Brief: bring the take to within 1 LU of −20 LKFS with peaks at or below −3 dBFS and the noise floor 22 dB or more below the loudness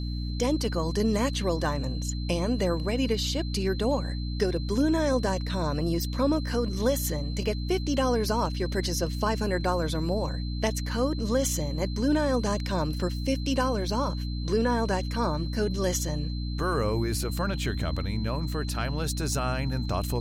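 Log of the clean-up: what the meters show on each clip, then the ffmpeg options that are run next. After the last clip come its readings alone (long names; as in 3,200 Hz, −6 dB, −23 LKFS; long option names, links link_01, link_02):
mains hum 60 Hz; hum harmonics up to 300 Hz; level of the hum −29 dBFS; interfering tone 4,100 Hz; level of the tone −43 dBFS; integrated loudness −28.0 LKFS; sample peak −12.5 dBFS; target loudness −20.0 LKFS
→ -af "bandreject=frequency=60:width_type=h:width=6,bandreject=frequency=120:width_type=h:width=6,bandreject=frequency=180:width_type=h:width=6,bandreject=frequency=240:width_type=h:width=6,bandreject=frequency=300:width_type=h:width=6"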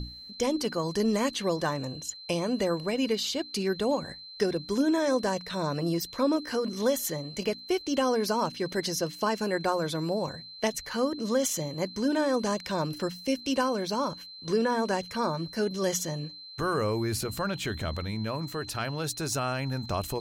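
mains hum none found; interfering tone 4,100 Hz; level of the tone −43 dBFS
→ -af "bandreject=frequency=4100:width=30"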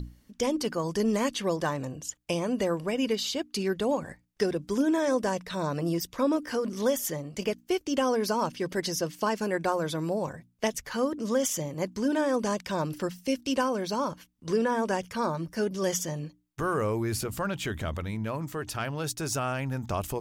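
interfering tone none found; integrated loudness −29.5 LKFS; sample peak −14.0 dBFS; target loudness −20.0 LKFS
→ -af "volume=9.5dB"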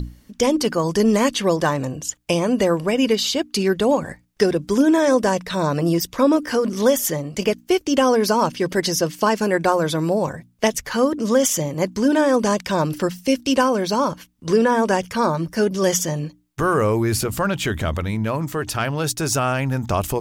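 integrated loudness −20.0 LKFS; sample peak −4.5 dBFS; background noise floor −54 dBFS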